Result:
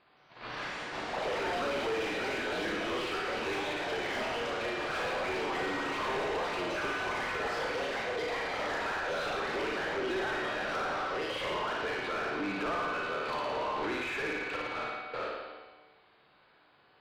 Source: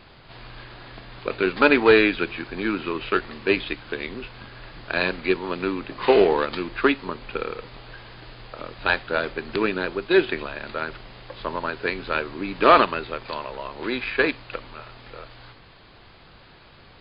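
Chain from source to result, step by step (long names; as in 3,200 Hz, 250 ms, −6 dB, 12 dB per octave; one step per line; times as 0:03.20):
noise gate −40 dBFS, range −22 dB
downward compressor 8 to 1, threshold −31 dBFS, peak gain reduction 21 dB
tuned comb filter 150 Hz, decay 1.7 s, mix 80%
flutter between parallel walls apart 9.6 metres, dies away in 1.1 s
delay with pitch and tempo change per echo 170 ms, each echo +4 semitones, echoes 3
mid-hump overdrive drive 36 dB, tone 1,400 Hz, clips at −17 dBFS
level −5.5 dB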